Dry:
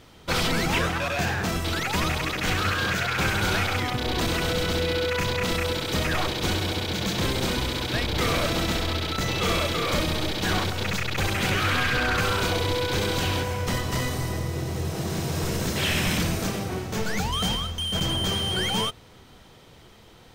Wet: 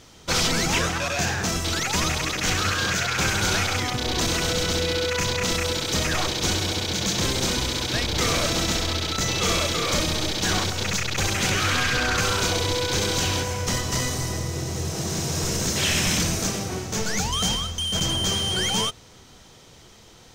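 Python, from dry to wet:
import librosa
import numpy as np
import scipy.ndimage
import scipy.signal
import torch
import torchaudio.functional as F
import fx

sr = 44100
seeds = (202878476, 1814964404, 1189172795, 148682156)

y = fx.peak_eq(x, sr, hz=6300.0, db=11.0, octaves=0.9)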